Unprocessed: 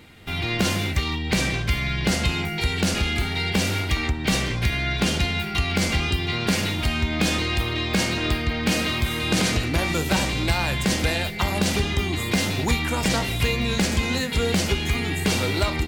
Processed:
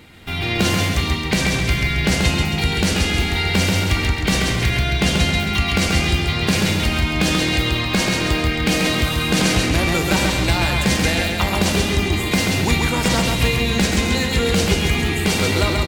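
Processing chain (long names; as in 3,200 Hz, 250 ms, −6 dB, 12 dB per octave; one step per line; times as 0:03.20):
repeating echo 135 ms, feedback 47%, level −3.5 dB
level +3 dB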